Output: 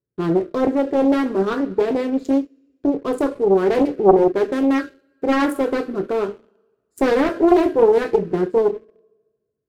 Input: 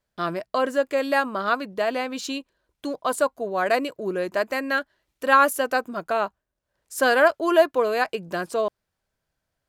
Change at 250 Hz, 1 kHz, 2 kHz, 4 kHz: +12.0, -1.0, -6.0, -4.5 dB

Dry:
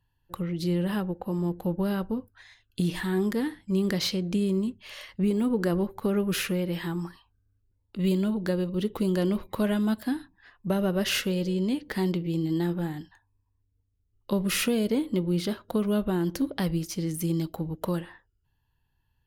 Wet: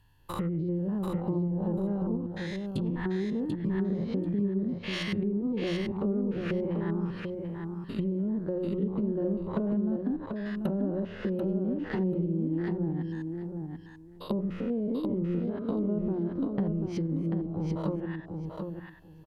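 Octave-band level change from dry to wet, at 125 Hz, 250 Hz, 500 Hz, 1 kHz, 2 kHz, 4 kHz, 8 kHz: -1.5 dB, -2.0 dB, -3.0 dB, -4.5 dB, -6.5 dB, -10.5 dB, under -15 dB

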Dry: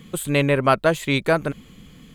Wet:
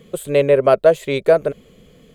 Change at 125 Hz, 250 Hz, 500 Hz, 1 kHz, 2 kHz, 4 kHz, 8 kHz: -4.0 dB, -3.0 dB, +8.0 dB, -0.5 dB, -4.0 dB, -4.0 dB, n/a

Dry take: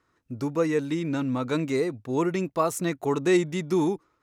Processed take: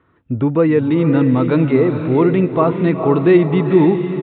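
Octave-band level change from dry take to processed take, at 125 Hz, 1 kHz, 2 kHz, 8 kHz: +15.0 dB, +8.5 dB, +7.0 dB, under -40 dB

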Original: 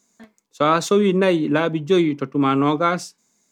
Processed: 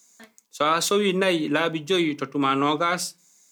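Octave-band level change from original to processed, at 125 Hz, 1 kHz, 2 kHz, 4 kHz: -8.0, -2.5, 0.0, +3.5 dB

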